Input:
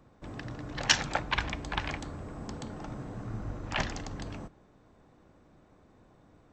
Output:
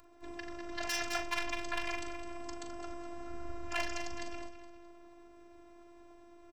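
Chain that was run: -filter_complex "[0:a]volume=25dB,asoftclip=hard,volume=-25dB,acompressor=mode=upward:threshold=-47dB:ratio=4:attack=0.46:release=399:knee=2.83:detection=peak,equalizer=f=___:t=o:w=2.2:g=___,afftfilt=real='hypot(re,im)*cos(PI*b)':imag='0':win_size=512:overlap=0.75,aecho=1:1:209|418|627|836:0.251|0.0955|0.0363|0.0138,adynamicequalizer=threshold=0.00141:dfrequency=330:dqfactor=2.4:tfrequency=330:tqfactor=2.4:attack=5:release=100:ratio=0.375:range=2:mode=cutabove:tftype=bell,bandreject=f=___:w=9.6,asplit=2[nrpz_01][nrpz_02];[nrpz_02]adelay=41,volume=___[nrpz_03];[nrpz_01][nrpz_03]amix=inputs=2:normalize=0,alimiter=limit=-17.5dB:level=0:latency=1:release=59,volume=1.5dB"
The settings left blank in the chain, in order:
110, -7, 3300, -8dB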